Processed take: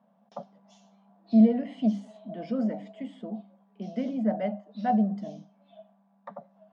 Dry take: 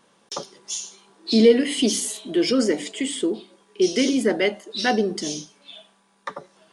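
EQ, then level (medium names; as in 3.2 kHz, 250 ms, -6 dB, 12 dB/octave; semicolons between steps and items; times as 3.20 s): two resonant band-passes 370 Hz, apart 1.7 oct; distance through air 79 m; +4.5 dB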